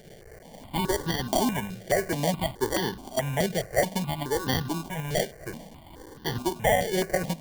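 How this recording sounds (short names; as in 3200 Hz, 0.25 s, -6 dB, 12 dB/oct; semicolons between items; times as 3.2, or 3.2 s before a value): a quantiser's noise floor 8-bit, dither triangular; tremolo saw up 2.6 Hz, depth 30%; aliases and images of a low sample rate 1300 Hz, jitter 0%; notches that jump at a steady rate 4.7 Hz 270–2300 Hz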